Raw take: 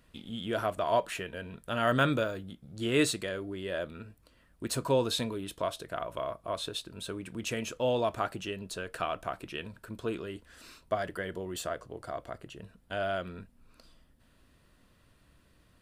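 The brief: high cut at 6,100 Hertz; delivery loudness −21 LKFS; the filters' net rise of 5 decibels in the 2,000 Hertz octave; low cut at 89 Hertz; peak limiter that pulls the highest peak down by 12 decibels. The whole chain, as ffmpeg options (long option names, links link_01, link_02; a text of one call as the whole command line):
ffmpeg -i in.wav -af "highpass=89,lowpass=6100,equalizer=frequency=2000:width_type=o:gain=7,volume=13.5dB,alimiter=limit=-6dB:level=0:latency=1" out.wav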